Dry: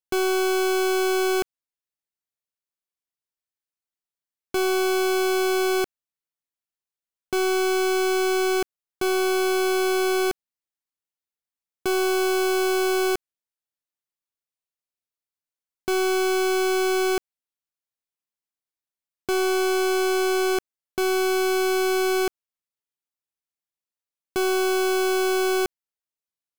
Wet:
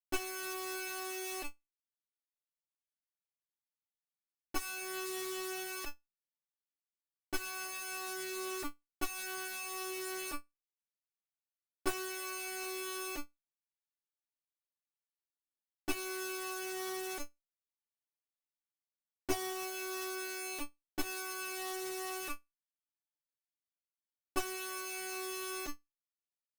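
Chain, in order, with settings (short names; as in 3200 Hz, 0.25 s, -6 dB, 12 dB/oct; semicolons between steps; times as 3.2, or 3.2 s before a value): chorus voices 4, 0.2 Hz, delay 11 ms, depth 1.9 ms; resonator 290 Hz, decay 0.21 s, harmonics all, mix 100%; added harmonics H 5 -13 dB, 8 -12 dB, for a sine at -27 dBFS; upward expander 1.5:1, over -54 dBFS; gain +5.5 dB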